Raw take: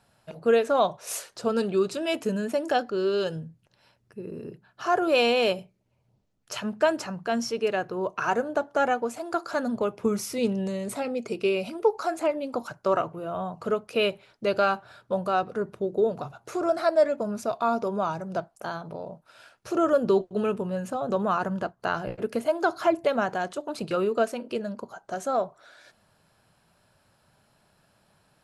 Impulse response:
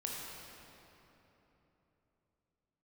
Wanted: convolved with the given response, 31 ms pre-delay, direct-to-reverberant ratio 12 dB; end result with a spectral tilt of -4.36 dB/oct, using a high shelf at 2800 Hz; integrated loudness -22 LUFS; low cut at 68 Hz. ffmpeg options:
-filter_complex "[0:a]highpass=68,highshelf=f=2.8k:g=-6,asplit=2[a][b];[1:a]atrim=start_sample=2205,adelay=31[c];[b][c]afir=irnorm=-1:irlink=0,volume=-13.5dB[d];[a][d]amix=inputs=2:normalize=0,volume=5.5dB"

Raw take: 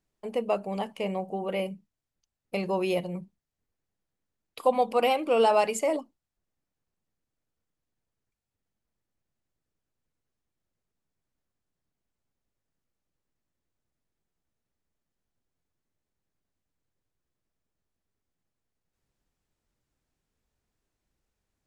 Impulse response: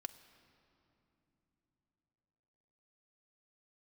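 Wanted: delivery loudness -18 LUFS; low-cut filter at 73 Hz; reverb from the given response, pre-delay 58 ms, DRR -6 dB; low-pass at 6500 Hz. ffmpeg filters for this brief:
-filter_complex "[0:a]highpass=73,lowpass=6.5k,asplit=2[a][b];[1:a]atrim=start_sample=2205,adelay=58[c];[b][c]afir=irnorm=-1:irlink=0,volume=9.5dB[d];[a][d]amix=inputs=2:normalize=0,volume=3dB"

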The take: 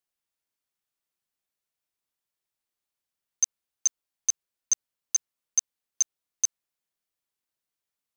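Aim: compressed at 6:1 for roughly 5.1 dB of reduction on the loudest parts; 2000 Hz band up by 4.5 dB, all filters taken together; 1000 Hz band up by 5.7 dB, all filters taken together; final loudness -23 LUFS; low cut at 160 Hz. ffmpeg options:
-af "highpass=160,equalizer=f=1k:t=o:g=6,equalizer=f=2k:t=o:g=4,acompressor=threshold=-24dB:ratio=6,volume=9.5dB"

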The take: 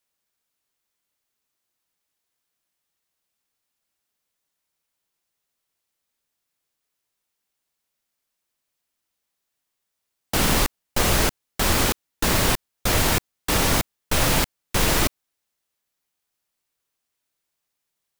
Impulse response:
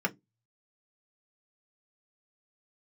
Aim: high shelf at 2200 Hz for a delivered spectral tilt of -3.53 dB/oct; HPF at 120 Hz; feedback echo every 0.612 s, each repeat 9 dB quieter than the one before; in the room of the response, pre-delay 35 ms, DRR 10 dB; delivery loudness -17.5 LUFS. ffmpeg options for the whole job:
-filter_complex "[0:a]highpass=120,highshelf=f=2.2k:g=-4.5,aecho=1:1:612|1224|1836|2448:0.355|0.124|0.0435|0.0152,asplit=2[a][b];[1:a]atrim=start_sample=2205,adelay=35[c];[b][c]afir=irnorm=-1:irlink=0,volume=-18dB[d];[a][d]amix=inputs=2:normalize=0,volume=6.5dB"

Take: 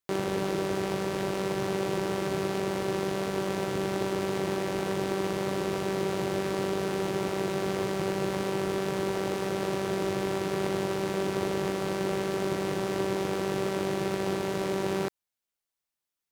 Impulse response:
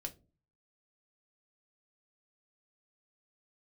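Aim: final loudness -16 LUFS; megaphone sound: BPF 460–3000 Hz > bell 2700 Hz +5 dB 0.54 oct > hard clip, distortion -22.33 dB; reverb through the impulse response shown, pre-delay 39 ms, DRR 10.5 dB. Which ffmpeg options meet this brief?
-filter_complex "[0:a]asplit=2[a][b];[1:a]atrim=start_sample=2205,adelay=39[c];[b][c]afir=irnorm=-1:irlink=0,volume=-8dB[d];[a][d]amix=inputs=2:normalize=0,highpass=460,lowpass=3k,equalizer=f=2.7k:t=o:w=0.54:g=5,asoftclip=type=hard:threshold=-23.5dB,volume=17dB"

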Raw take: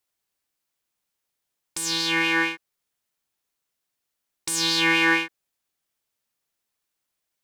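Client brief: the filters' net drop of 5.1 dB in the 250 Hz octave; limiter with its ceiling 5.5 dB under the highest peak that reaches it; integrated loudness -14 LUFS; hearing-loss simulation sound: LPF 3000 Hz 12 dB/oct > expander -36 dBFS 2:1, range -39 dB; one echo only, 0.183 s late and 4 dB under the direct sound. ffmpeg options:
-af "equalizer=f=250:t=o:g=-8.5,alimiter=limit=-14.5dB:level=0:latency=1,lowpass=3k,aecho=1:1:183:0.631,agate=range=-39dB:threshold=-36dB:ratio=2,volume=12.5dB"

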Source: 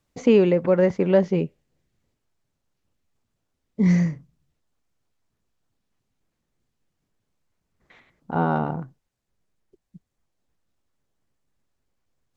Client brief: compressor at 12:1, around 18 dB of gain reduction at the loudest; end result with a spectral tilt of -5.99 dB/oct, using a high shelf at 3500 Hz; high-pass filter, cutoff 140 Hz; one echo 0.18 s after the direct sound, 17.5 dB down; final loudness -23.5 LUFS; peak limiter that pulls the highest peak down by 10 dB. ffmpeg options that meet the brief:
-af "highpass=140,highshelf=f=3.5k:g=5,acompressor=threshold=-30dB:ratio=12,alimiter=level_in=3dB:limit=-24dB:level=0:latency=1,volume=-3dB,aecho=1:1:180:0.133,volume=14.5dB"

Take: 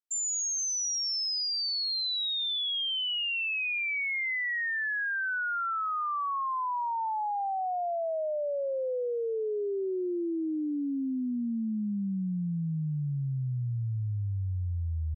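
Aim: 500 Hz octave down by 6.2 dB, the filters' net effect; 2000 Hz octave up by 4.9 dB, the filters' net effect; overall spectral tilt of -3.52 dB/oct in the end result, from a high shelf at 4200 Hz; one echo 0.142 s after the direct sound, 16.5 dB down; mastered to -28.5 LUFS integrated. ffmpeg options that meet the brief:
-af "equalizer=f=500:t=o:g=-8.5,equalizer=f=2k:t=o:g=8.5,highshelf=f=4.2k:g=-9,aecho=1:1:142:0.15,volume=1dB"

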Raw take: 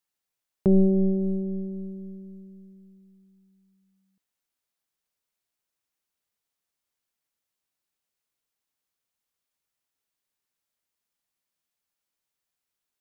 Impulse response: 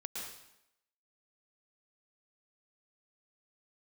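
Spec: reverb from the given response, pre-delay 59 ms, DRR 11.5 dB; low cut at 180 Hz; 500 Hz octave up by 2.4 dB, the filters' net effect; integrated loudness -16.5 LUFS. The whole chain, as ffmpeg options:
-filter_complex "[0:a]highpass=180,equalizer=f=500:t=o:g=4,asplit=2[a][b];[1:a]atrim=start_sample=2205,adelay=59[c];[b][c]afir=irnorm=-1:irlink=0,volume=-11.5dB[d];[a][d]amix=inputs=2:normalize=0,volume=9.5dB"

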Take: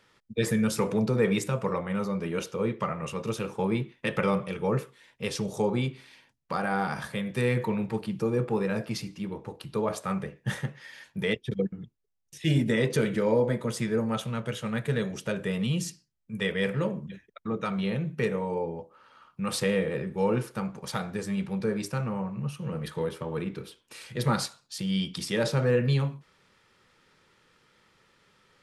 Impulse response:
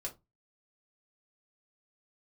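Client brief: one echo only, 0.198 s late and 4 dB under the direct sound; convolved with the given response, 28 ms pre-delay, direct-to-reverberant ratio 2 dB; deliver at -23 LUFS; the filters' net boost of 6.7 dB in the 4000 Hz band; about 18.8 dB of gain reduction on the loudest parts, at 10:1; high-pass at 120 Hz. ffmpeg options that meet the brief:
-filter_complex "[0:a]highpass=120,equalizer=f=4k:t=o:g=8.5,acompressor=threshold=-40dB:ratio=10,aecho=1:1:198:0.631,asplit=2[a][b];[1:a]atrim=start_sample=2205,adelay=28[c];[b][c]afir=irnorm=-1:irlink=0,volume=-1dB[d];[a][d]amix=inputs=2:normalize=0,volume=17.5dB"

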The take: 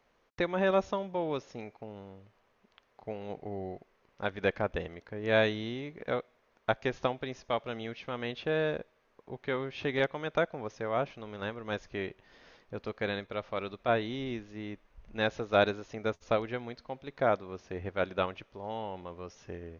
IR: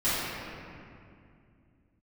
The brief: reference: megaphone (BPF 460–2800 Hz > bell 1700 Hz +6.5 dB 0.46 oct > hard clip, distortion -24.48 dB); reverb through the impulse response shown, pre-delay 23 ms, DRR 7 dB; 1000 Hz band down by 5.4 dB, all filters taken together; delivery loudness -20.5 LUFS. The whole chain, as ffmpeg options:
-filter_complex "[0:a]equalizer=f=1k:t=o:g=-9,asplit=2[a][b];[1:a]atrim=start_sample=2205,adelay=23[c];[b][c]afir=irnorm=-1:irlink=0,volume=-20.5dB[d];[a][d]amix=inputs=2:normalize=0,highpass=460,lowpass=2.8k,equalizer=f=1.7k:t=o:w=0.46:g=6.5,asoftclip=type=hard:threshold=-19dB,volume=16.5dB"

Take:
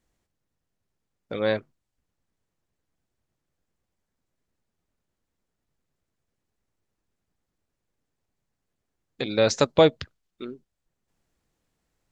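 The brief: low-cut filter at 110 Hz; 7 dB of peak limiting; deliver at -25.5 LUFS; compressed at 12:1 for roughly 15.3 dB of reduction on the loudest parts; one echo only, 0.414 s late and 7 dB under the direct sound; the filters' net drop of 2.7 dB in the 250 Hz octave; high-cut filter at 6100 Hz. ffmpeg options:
-af "highpass=110,lowpass=6.1k,equalizer=f=250:t=o:g=-3.5,acompressor=threshold=-27dB:ratio=12,alimiter=limit=-18.5dB:level=0:latency=1,aecho=1:1:414:0.447,volume=11.5dB"

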